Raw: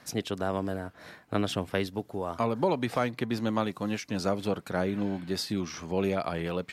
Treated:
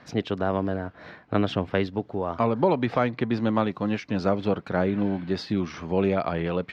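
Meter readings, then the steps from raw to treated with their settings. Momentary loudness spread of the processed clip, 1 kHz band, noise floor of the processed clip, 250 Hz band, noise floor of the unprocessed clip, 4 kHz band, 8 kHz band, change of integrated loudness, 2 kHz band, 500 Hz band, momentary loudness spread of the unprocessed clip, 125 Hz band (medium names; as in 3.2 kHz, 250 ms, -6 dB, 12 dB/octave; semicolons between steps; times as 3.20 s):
6 LU, +4.5 dB, -52 dBFS, +5.0 dB, -57 dBFS, -1.0 dB, under -10 dB, +4.5 dB, +3.5 dB, +5.0 dB, 6 LU, +5.5 dB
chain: distance through air 230 m; trim +5.5 dB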